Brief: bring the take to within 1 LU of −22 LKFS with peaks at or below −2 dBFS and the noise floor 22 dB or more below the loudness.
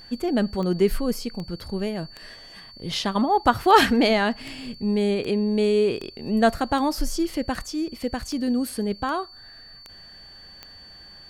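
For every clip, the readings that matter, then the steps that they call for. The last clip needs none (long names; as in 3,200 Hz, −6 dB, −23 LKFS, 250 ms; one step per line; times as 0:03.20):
number of clicks 14; interfering tone 4,500 Hz; level of the tone −44 dBFS; integrated loudness −23.5 LKFS; sample peak −2.5 dBFS; target loudness −22.0 LKFS
→ click removal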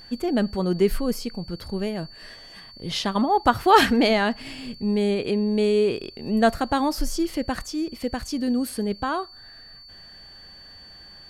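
number of clicks 0; interfering tone 4,500 Hz; level of the tone −44 dBFS
→ notch filter 4,500 Hz, Q 30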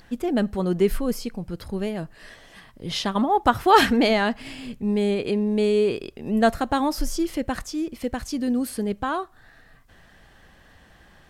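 interfering tone none found; integrated loudness −23.5 LKFS; sample peak −2.5 dBFS; target loudness −22.0 LKFS
→ level +1.5 dB
brickwall limiter −2 dBFS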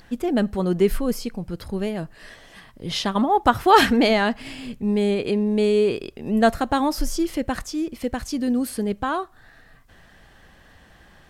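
integrated loudness −22.0 LKFS; sample peak −2.0 dBFS; background noise floor −52 dBFS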